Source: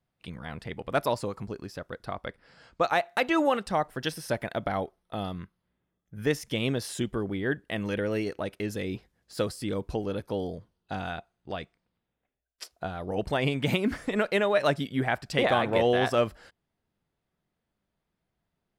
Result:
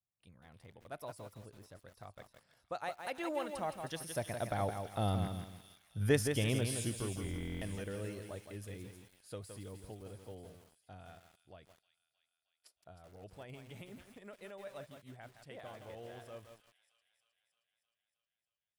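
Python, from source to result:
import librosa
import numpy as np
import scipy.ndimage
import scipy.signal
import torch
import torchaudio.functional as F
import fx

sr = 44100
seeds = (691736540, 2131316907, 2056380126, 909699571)

y = fx.doppler_pass(x, sr, speed_mps=11, closest_m=3.3, pass_at_s=5.57)
y = fx.graphic_eq_15(y, sr, hz=(100, 630, 10000), db=(10, 4, 12))
y = fx.echo_wet_highpass(y, sr, ms=312, feedback_pct=66, hz=2900.0, wet_db=-9)
y = fx.buffer_glitch(y, sr, at_s=(7.22,), block=1024, repeats=16)
y = fx.echo_crushed(y, sr, ms=167, feedback_pct=35, bits=10, wet_db=-6.5)
y = y * librosa.db_to_amplitude(2.0)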